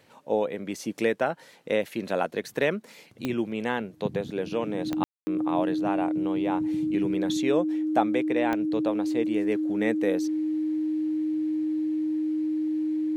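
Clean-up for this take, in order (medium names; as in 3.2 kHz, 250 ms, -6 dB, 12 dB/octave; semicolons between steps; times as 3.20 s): de-click; band-stop 310 Hz, Q 30; room tone fill 5.04–5.27 s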